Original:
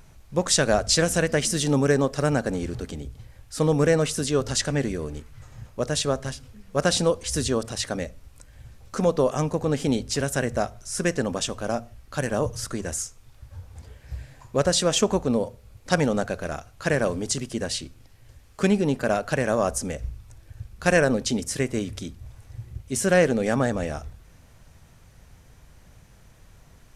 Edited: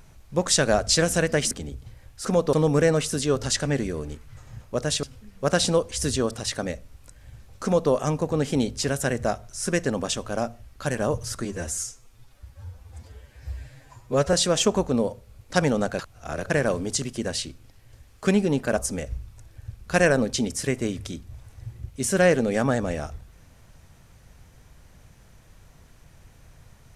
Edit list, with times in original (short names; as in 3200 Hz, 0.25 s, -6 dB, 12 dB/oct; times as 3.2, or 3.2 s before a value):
1.51–2.84 cut
6.08–6.35 cut
8.95–9.23 copy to 3.58
12.77–14.69 stretch 1.5×
16.35–16.86 reverse
19.13–19.69 cut